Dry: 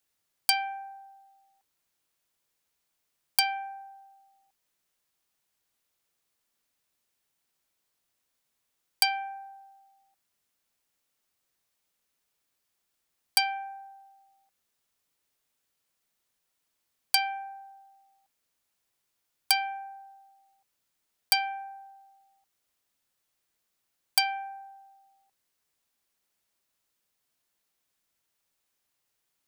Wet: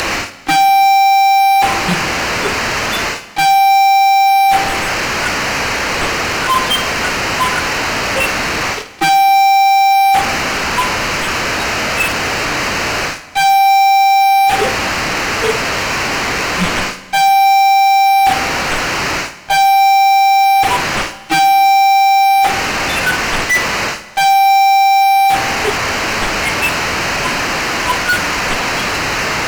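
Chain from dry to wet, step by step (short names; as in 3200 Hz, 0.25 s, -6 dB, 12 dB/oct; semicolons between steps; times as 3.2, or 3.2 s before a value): delta modulation 16 kbps, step -22 dBFS; spectral noise reduction 26 dB; reverse; compressor 6:1, threshold -42 dBFS, peak gain reduction 16.5 dB; reverse; fuzz box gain 55 dB, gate -57 dBFS; on a send: flutter echo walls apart 9 m, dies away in 0.3 s; on the sum: Schroeder reverb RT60 1.7 s, combs from 33 ms, DRR 14.5 dB; gain +3.5 dB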